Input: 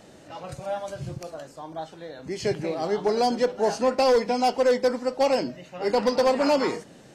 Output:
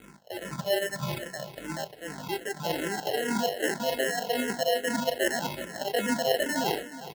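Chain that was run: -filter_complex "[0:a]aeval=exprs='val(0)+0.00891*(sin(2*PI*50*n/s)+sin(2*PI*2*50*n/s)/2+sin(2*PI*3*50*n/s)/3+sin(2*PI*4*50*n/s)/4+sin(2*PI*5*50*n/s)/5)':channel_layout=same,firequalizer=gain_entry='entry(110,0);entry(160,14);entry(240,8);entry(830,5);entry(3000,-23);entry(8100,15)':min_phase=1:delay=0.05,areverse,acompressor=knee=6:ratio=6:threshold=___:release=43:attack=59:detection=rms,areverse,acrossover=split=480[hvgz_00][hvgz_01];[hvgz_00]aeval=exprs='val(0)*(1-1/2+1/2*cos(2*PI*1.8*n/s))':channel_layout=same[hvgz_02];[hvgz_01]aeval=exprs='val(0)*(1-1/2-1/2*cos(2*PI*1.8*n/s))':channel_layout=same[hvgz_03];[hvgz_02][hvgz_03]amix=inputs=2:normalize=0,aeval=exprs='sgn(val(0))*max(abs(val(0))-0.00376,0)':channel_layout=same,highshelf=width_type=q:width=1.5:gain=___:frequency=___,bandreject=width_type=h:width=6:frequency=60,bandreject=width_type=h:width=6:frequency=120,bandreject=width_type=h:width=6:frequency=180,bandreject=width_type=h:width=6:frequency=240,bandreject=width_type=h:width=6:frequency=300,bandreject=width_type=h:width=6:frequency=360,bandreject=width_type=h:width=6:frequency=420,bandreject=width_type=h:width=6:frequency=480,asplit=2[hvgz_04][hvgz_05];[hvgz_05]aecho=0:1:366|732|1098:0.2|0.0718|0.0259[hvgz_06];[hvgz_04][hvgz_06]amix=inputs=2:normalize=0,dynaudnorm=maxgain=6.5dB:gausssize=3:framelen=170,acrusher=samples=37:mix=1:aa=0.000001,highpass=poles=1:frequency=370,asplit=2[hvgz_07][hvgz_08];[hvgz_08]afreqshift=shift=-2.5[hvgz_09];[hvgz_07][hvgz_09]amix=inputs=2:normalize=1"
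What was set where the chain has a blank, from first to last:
-25dB, -13.5, 4.2k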